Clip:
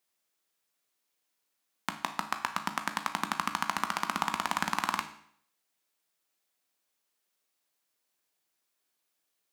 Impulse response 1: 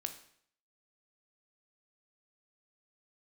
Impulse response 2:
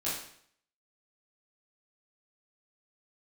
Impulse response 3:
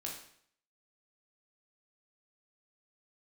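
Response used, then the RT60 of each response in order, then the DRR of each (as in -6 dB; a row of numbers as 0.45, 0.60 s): 1; 0.65, 0.65, 0.65 s; 6.5, -10.0, -2.0 dB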